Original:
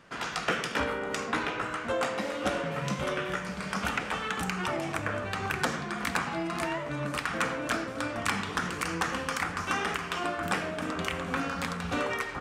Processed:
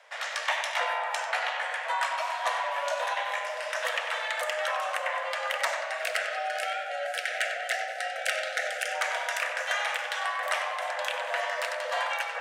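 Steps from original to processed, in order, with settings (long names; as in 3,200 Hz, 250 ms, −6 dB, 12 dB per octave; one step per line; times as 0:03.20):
time-frequency box erased 0:05.99–0:08.94, 400–830 Hz
frequency shifter +430 Hz
tape delay 95 ms, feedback 73%, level −7 dB, low-pass 3,500 Hz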